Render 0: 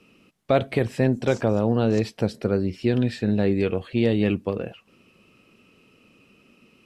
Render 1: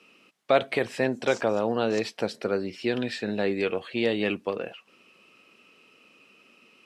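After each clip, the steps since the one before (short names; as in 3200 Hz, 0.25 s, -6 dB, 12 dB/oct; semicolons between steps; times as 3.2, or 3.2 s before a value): weighting filter A; gain +1.5 dB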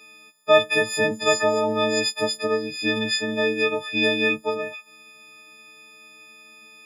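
frequency quantiser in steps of 6 st; gain +1.5 dB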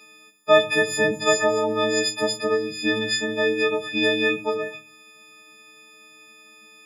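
shoebox room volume 130 m³, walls furnished, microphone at 0.81 m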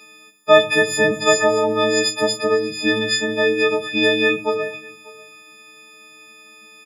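echo 0.593 s -23 dB; gain +4 dB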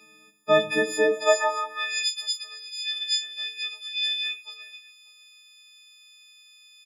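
high-pass sweep 170 Hz -> 3700 Hz, 0.67–2.15; gain -8.5 dB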